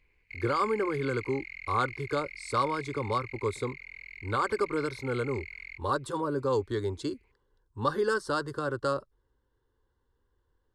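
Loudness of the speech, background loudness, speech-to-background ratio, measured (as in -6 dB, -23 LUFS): -31.5 LUFS, -43.0 LUFS, 11.5 dB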